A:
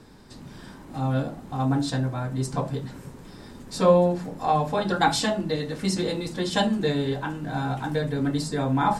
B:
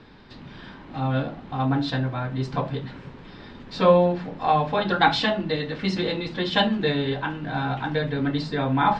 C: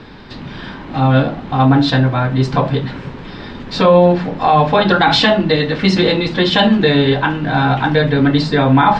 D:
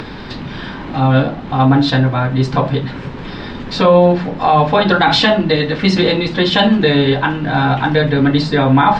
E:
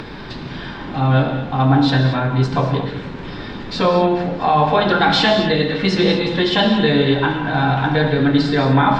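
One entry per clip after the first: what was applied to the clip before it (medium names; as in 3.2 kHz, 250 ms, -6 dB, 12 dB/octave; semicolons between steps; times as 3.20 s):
low-pass 3.6 kHz 24 dB/octave; tilt shelf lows -4.5 dB, about 1.5 kHz; trim +4.5 dB
loudness maximiser +13.5 dB; trim -1 dB
upward compressor, threshold -20 dBFS
gated-style reverb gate 260 ms flat, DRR 4.5 dB; trim -4 dB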